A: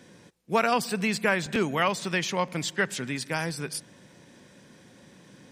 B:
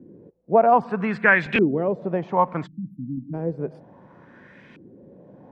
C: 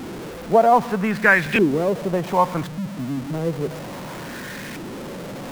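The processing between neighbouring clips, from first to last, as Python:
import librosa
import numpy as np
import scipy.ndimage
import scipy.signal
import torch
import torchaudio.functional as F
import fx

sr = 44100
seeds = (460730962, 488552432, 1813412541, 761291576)

y1 = fx.filter_lfo_lowpass(x, sr, shape='saw_up', hz=0.63, low_hz=310.0, high_hz=2600.0, q=2.8)
y1 = fx.spec_erase(y1, sr, start_s=2.67, length_s=0.67, low_hz=320.0, high_hz=11000.0)
y1 = y1 * 10.0 ** (3.0 / 20.0)
y2 = y1 + 0.5 * 10.0 ** (-29.5 / 20.0) * np.sign(y1)
y2 = y2 * 10.0 ** (1.0 / 20.0)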